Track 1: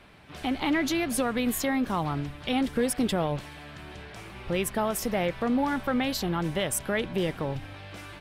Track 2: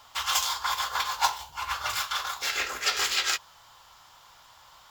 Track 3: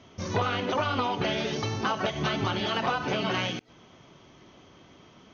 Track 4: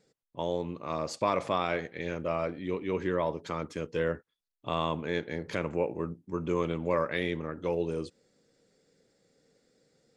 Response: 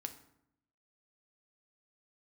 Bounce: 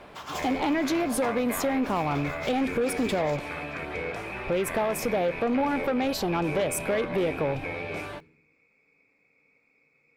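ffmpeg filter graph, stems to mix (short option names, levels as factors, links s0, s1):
-filter_complex "[0:a]volume=0.75,asplit=2[s0][s1];[s1]volume=0.422[s2];[1:a]volume=0.158[s3];[2:a]adelay=1900,volume=0.473[s4];[3:a]lowpass=f=2300:p=1,volume=1.19,asplit=2[s5][s6];[s6]volume=0.562[s7];[s4][s5]amix=inputs=2:normalize=0,lowpass=f=2300:t=q:w=0.5098,lowpass=f=2300:t=q:w=0.6013,lowpass=f=2300:t=q:w=0.9,lowpass=f=2300:t=q:w=2.563,afreqshift=-2700,acompressor=threshold=0.0158:ratio=6,volume=1[s8];[s0][s3]amix=inputs=2:normalize=0,equalizer=f=580:t=o:w=2.4:g=13.5,acompressor=threshold=0.0891:ratio=6,volume=1[s9];[4:a]atrim=start_sample=2205[s10];[s2][s7]amix=inputs=2:normalize=0[s11];[s11][s10]afir=irnorm=-1:irlink=0[s12];[s8][s9][s12]amix=inputs=3:normalize=0,asoftclip=type=tanh:threshold=0.106"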